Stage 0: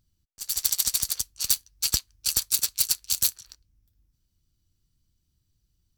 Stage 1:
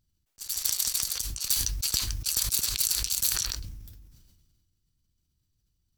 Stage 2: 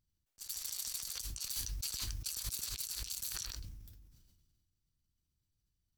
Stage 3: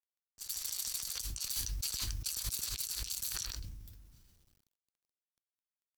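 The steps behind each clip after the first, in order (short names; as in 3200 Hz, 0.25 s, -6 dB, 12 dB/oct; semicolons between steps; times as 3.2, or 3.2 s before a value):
sustainer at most 34 dB/s; gain -4.5 dB
limiter -17.5 dBFS, peak gain reduction 11.5 dB; gain -8 dB
requantised 12-bit, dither none; gain +2.5 dB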